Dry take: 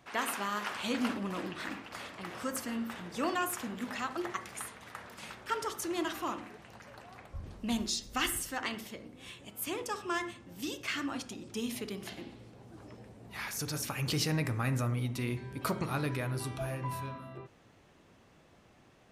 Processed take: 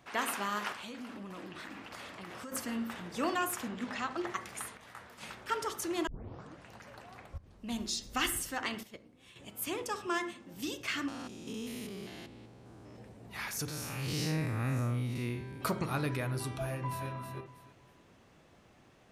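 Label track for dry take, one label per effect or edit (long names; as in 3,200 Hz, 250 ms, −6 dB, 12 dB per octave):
0.720000	2.520000	downward compressor 8 to 1, threshold −41 dBFS
3.680000	4.270000	low-pass filter 7,000 Hz
4.770000	5.210000	micro pitch shift up and down each way 36 cents
6.070000	6.070000	tape start 0.62 s
7.380000	8.070000	fade in, from −17.5 dB
8.830000	9.360000	noise gate −43 dBFS, range −10 dB
10.070000	10.540000	low shelf with overshoot 150 Hz −9 dB, Q 1.5
11.080000	12.960000	spectrum averaged block by block every 200 ms
13.680000	15.610000	spectrum smeared in time width 141 ms
16.680000	17.080000	delay throw 320 ms, feedback 25%, level −7 dB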